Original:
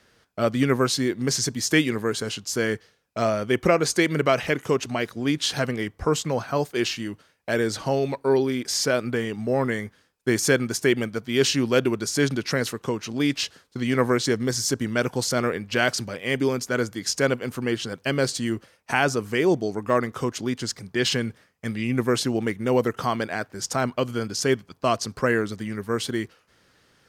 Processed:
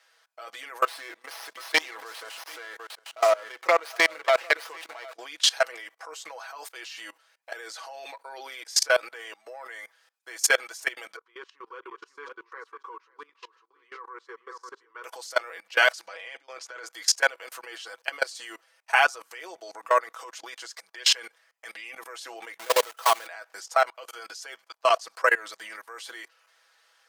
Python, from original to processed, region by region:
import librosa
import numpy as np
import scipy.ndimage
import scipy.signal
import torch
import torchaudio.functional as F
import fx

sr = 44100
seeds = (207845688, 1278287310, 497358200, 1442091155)

y = fx.chain(x, sr, fx.echo_single(ms=750, db=-11.5),
    fx.running_max(window=5), at=(0.82, 5.14))
y = fx.chain(y, sr, fx.double_bandpass(hz=660.0, octaves=1.4),
    fx.echo_single(ms=539, db=-11.5), at=(11.16, 15.04))
y = fx.chain(y, sr, fx.over_compress(threshold_db=-26.0, ratio=-0.5),
    fx.air_absorb(metres=79.0), at=(16.07, 16.86))
y = fx.chain(y, sr, fx.block_float(bits=3),
    fx.low_shelf(hz=210.0, db=10.5), at=(22.59, 23.27))
y = scipy.signal.sosfilt(scipy.signal.butter(4, 650.0, 'highpass', fs=sr, output='sos'), y)
y = y + 0.75 * np.pad(y, (int(6.1 * sr / 1000.0), 0))[:len(y)]
y = fx.level_steps(y, sr, step_db=23)
y = F.gain(torch.from_numpy(y), 5.0).numpy()